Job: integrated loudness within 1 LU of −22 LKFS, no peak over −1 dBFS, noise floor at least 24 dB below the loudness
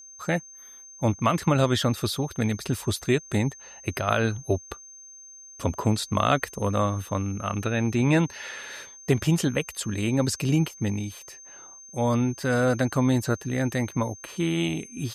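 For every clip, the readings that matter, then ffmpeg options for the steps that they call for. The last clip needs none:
interfering tone 6,300 Hz; level of the tone −44 dBFS; integrated loudness −26.0 LKFS; sample peak −8.5 dBFS; target loudness −22.0 LKFS
→ -af "bandreject=frequency=6300:width=30"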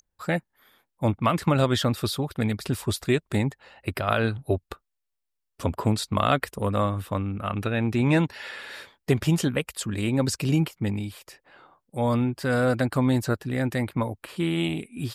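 interfering tone none found; integrated loudness −26.0 LKFS; sample peak −8.5 dBFS; target loudness −22.0 LKFS
→ -af "volume=4dB"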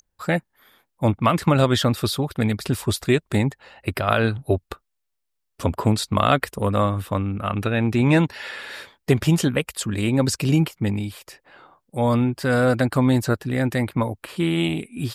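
integrated loudness −22.0 LKFS; sample peak −4.5 dBFS; background noise floor −76 dBFS

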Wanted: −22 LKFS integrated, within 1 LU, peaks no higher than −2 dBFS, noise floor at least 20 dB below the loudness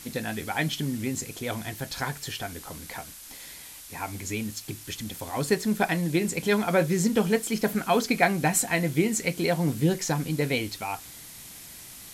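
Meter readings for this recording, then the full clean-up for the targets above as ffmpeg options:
background noise floor −45 dBFS; target noise floor −47 dBFS; integrated loudness −27.0 LKFS; sample peak −8.0 dBFS; target loudness −22.0 LKFS
→ -af "afftdn=noise_reduction=6:noise_floor=-45"
-af "volume=5dB"

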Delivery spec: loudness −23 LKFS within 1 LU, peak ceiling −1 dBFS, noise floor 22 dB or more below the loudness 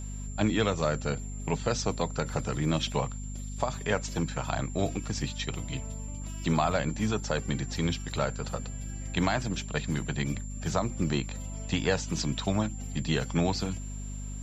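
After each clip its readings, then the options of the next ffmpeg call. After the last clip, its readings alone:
mains hum 50 Hz; hum harmonics up to 250 Hz; level of the hum −35 dBFS; interfering tone 7,300 Hz; level of the tone −46 dBFS; integrated loudness −31.0 LKFS; sample peak −12.5 dBFS; target loudness −23.0 LKFS
→ -af "bandreject=frequency=50:width_type=h:width=6,bandreject=frequency=100:width_type=h:width=6,bandreject=frequency=150:width_type=h:width=6,bandreject=frequency=200:width_type=h:width=6,bandreject=frequency=250:width_type=h:width=6"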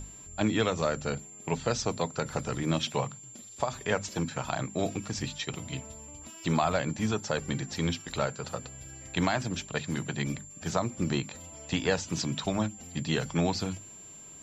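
mains hum none found; interfering tone 7,300 Hz; level of the tone −46 dBFS
→ -af "bandreject=frequency=7300:width=30"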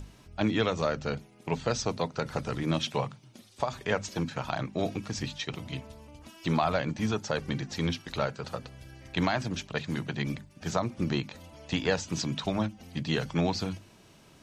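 interfering tone none found; integrated loudness −32.0 LKFS; sample peak −13.0 dBFS; target loudness −23.0 LKFS
→ -af "volume=9dB"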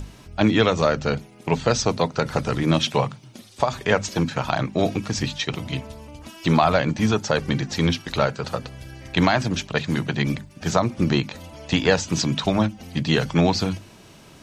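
integrated loudness −23.0 LKFS; sample peak −4.0 dBFS; background noise floor −48 dBFS

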